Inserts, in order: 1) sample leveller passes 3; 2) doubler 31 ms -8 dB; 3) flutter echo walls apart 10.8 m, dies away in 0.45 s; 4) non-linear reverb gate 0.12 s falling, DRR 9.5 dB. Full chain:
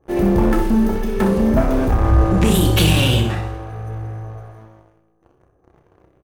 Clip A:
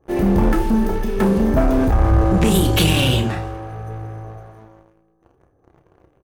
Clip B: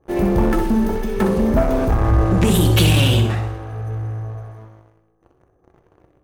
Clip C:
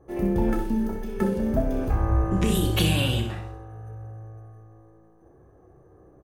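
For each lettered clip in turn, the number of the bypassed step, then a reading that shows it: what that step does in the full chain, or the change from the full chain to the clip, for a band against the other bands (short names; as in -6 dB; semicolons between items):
3, echo-to-direct -5.5 dB to -9.5 dB; 2, 125 Hz band +1.5 dB; 1, loudness change -8.0 LU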